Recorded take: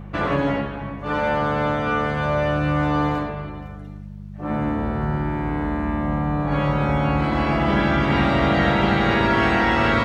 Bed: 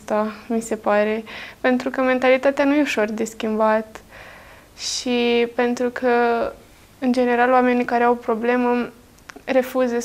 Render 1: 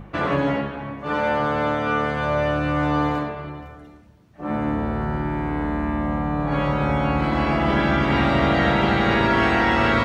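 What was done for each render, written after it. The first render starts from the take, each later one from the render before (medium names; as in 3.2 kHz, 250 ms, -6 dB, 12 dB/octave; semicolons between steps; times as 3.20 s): de-hum 50 Hz, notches 4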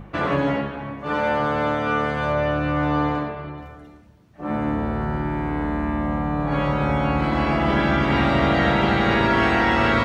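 2.32–3.58 s: distance through air 81 m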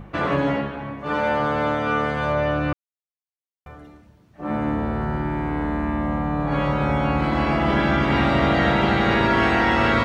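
2.73–3.66 s: mute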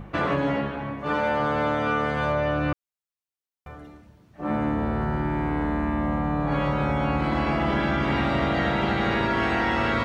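compression, threshold -20 dBFS, peak gain reduction 6 dB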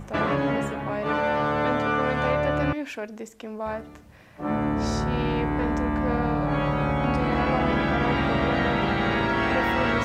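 add bed -13.5 dB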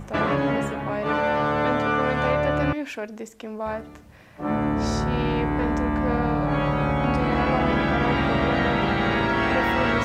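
trim +1.5 dB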